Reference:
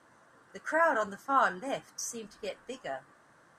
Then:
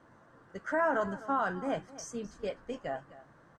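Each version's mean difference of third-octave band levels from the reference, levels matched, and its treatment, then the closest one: 5.0 dB: limiter -20.5 dBFS, peak gain reduction 7 dB; LPF 8200 Hz 12 dB/oct; tilt -2.5 dB/oct; on a send: echo 0.257 s -17 dB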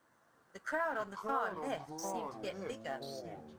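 7.5 dB: G.711 law mismatch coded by A; dynamic EQ 7100 Hz, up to -7 dB, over -53 dBFS, Q 0.99; compressor 4:1, threshold -32 dBFS, peak gain reduction 10 dB; echoes that change speed 0.215 s, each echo -6 st, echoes 3, each echo -6 dB; gain -1 dB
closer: first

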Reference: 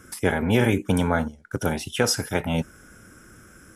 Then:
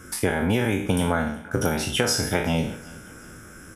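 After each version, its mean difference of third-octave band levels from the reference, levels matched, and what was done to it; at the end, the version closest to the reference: 6.5 dB: spectral trails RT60 0.47 s; compressor, threshold -22 dBFS, peak gain reduction 8.5 dB; on a send: feedback echo 0.373 s, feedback 47%, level -23 dB; on the sum: gain +3.5 dB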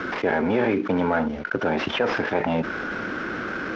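12.0 dB: CVSD 32 kbps; three-band isolator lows -18 dB, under 220 Hz, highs -22 dB, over 2600 Hz; fast leveller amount 70%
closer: first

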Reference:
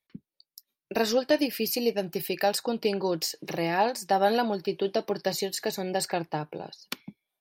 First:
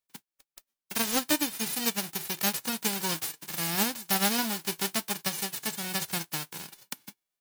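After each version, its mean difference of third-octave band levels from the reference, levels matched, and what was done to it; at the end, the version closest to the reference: 12.0 dB: spectral whitening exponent 0.1; gain -3 dB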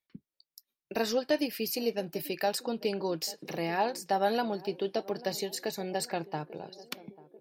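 1.0 dB: narrowing echo 0.841 s, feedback 65%, band-pass 370 Hz, level -18 dB; gain -4.5 dB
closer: second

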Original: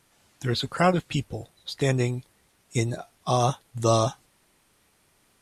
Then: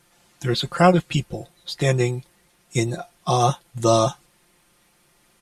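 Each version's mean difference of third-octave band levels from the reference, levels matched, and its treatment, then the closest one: 1.5 dB: comb 5.7 ms; gain +2.5 dB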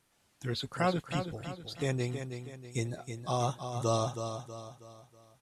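4.0 dB: feedback echo 0.321 s, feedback 42%, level -8 dB; gain -8.5 dB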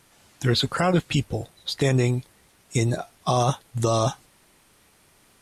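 3.0 dB: limiter -17 dBFS, peak gain reduction 9 dB; gain +6 dB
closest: first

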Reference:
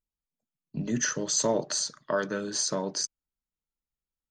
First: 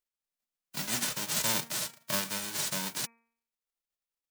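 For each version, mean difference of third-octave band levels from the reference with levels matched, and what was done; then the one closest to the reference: 15.5 dB: spectral whitening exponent 0.1; de-hum 230.8 Hz, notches 11; gain -3.5 dB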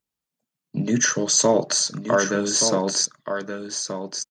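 2.5 dB: HPF 98 Hz; on a send: echo 1.175 s -7.5 dB; on the sum: gain +8 dB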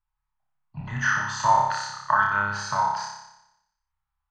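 10.0 dB: EQ curve 130 Hz 0 dB, 210 Hz -21 dB, 480 Hz -29 dB, 860 Hz +9 dB, 1700 Hz +1 dB, 7600 Hz -24 dB; on a send: flutter echo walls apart 5.1 m, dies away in 0.87 s; on the sum: gain +6.5 dB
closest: second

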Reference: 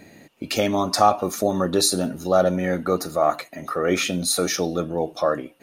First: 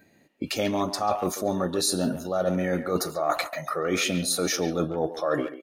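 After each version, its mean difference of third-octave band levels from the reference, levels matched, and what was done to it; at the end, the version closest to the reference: 4.0 dB: spectral noise reduction 19 dB; reverse; compressor 12:1, threshold -28 dBFS, peak gain reduction 18 dB; reverse; speakerphone echo 0.14 s, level -10 dB; gain +6 dB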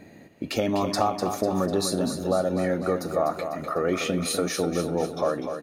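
5.5 dB: high shelf 2100 Hz -8 dB; compressor, threshold -20 dBFS, peak gain reduction 8.5 dB; feedback echo 0.249 s, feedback 53%, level -8 dB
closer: first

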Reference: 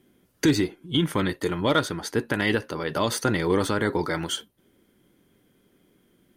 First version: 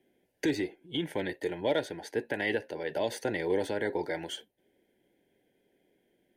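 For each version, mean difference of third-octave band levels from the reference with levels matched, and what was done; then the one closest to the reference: 4.5 dB: Butterworth band-stop 1200 Hz, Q 1.4; three-band isolator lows -14 dB, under 390 Hz, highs -12 dB, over 2300 Hz; gain -1.5 dB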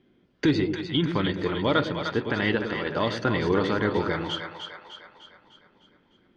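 7.0 dB: LPF 4300 Hz 24 dB/oct; split-band echo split 590 Hz, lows 0.106 s, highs 0.302 s, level -6.5 dB; gain -1.5 dB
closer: first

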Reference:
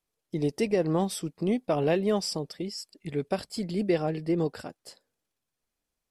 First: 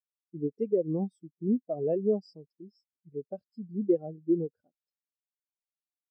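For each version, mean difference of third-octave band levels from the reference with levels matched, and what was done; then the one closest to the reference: 14.5 dB: spectral expander 2.5:1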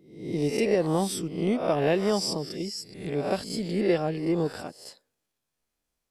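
5.5 dB: spectral swells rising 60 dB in 0.62 s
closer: second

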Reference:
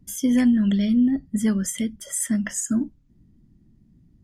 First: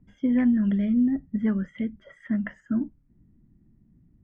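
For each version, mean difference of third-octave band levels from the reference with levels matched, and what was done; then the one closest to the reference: 3.5 dB: LPF 2200 Hz 24 dB/oct; gain -3 dB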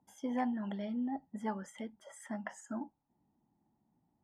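5.5 dB: band-pass 840 Hz, Q 9.6; gain +12 dB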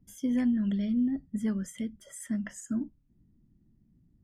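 1.5 dB: high shelf 3200 Hz -10.5 dB; gain -8.5 dB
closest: third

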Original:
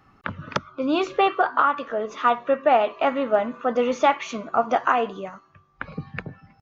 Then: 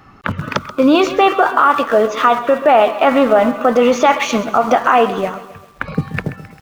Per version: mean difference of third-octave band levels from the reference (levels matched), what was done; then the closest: 6.0 dB: in parallel at -12 dB: sample gate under -31 dBFS; on the sum: maximiser +14.5 dB; lo-fi delay 0.132 s, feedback 55%, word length 6-bit, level -14.5 dB; gain -2 dB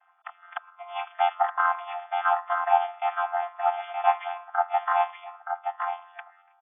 12.0 dB: chord vocoder bare fifth, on F3; on a send: echo 0.922 s -5.5 dB; on the sum: FFT band-pass 650–3500 Hz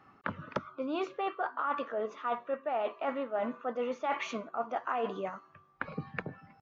3.5 dB: HPF 280 Hz 6 dB/oct; high shelf 3600 Hz -11 dB; reverse; compressor 10:1, threshold -30 dBFS, peak gain reduction 16 dB; reverse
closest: third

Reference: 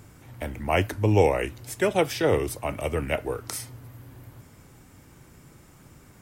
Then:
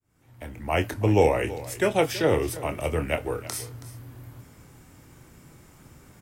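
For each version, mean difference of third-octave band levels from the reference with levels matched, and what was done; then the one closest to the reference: 2.5 dB: opening faded in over 0.96 s; doubler 25 ms -9.5 dB; on a send: echo 0.325 s -16.5 dB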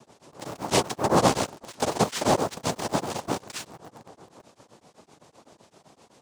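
7.5 dB: noise vocoder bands 2; in parallel at -7.5 dB: requantised 6-bit, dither none; on the sum: beating tremolo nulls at 7.8 Hz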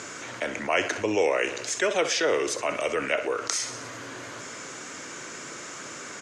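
11.5 dB: speaker cabinet 490–7000 Hz, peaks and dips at 820 Hz -9 dB, 1500 Hz +3 dB, 6600 Hz +9 dB; feedback echo 63 ms, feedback 57%, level -18 dB; fast leveller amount 50%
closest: first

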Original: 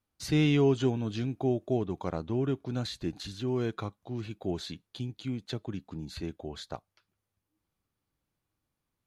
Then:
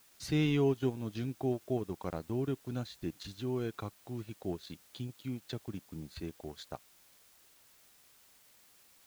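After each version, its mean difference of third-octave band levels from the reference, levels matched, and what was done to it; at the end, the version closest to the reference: 5.0 dB: transient shaper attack 0 dB, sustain -12 dB; in parallel at -7.5 dB: requantised 8-bit, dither triangular; on the sum: gain -7.5 dB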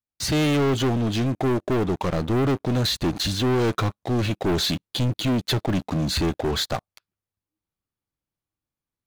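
9.0 dB: vocal rider within 5 dB 2 s; sample leveller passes 5; gain -2.5 dB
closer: first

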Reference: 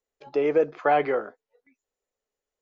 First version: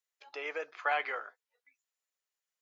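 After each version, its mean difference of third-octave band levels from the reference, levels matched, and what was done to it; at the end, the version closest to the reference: 8.0 dB: HPF 1400 Hz 12 dB/oct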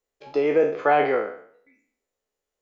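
2.5 dB: spectral trails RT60 0.57 s; gain +1 dB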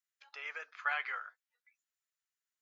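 11.0 dB: Chebyshev high-pass 1400 Hz, order 3; gain -2.5 dB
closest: second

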